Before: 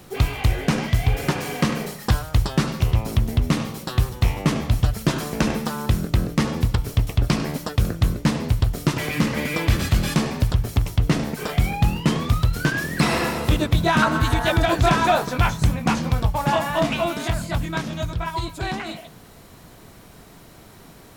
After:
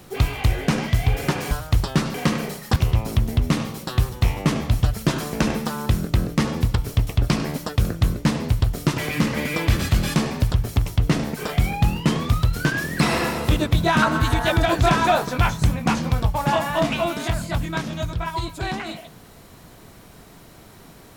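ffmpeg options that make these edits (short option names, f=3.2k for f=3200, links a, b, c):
-filter_complex "[0:a]asplit=4[a][b][c][d];[a]atrim=end=1.512[e];[b]atrim=start=2.128:end=2.762[f];[c]atrim=start=1.508:end=2.132[g];[d]atrim=start=2.758[h];[e][f]acrossfade=d=0.004:c1=hsin:c2=hsin[i];[i][g]acrossfade=d=0.004:c1=hsin:c2=hsin[j];[j][h]acrossfade=d=0.004:c1=hsin:c2=hsin"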